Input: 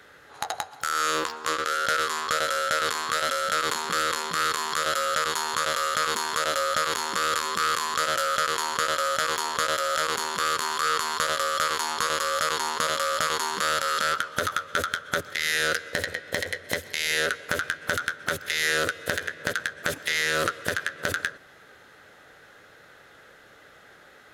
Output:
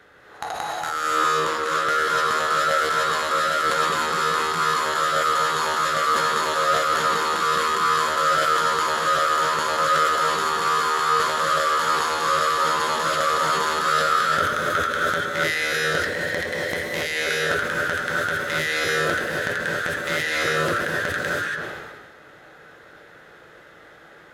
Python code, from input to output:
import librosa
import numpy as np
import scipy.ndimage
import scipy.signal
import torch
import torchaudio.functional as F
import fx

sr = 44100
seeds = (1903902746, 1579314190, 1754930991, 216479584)

y = fx.high_shelf(x, sr, hz=3100.0, db=-8.5)
y = fx.rev_gated(y, sr, seeds[0], gate_ms=310, shape='rising', drr_db=-4.5)
y = fx.sustainer(y, sr, db_per_s=35.0)